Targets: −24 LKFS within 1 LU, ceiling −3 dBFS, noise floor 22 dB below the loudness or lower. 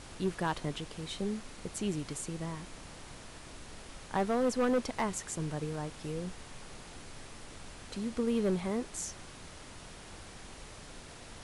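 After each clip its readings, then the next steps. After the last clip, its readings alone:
share of clipped samples 0.7%; peaks flattened at −24.0 dBFS; background noise floor −50 dBFS; target noise floor −57 dBFS; integrated loudness −35.0 LKFS; sample peak −24.0 dBFS; target loudness −24.0 LKFS
→ clipped peaks rebuilt −24 dBFS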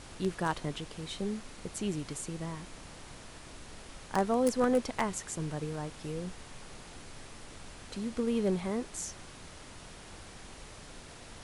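share of clipped samples 0.0%; background noise floor −50 dBFS; target noise floor −56 dBFS
→ noise reduction from a noise print 6 dB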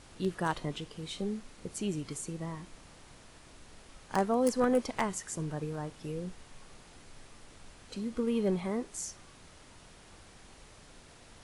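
background noise floor −56 dBFS; integrated loudness −34.0 LKFS; sample peak −15.0 dBFS; target loudness −24.0 LKFS
→ level +10 dB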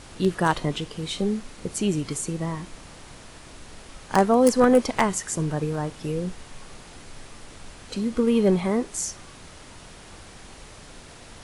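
integrated loudness −24.0 LKFS; sample peak −5.0 dBFS; background noise floor −46 dBFS

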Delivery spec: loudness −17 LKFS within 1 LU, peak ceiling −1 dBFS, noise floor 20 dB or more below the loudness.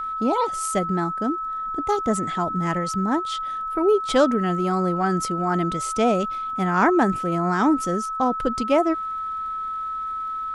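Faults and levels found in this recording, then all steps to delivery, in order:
crackle rate 49 per second; interfering tone 1,300 Hz; level of the tone −26 dBFS; integrated loudness −23.0 LKFS; sample peak −5.5 dBFS; target loudness −17.0 LKFS
→ click removal
notch filter 1,300 Hz, Q 30
level +6 dB
brickwall limiter −1 dBFS

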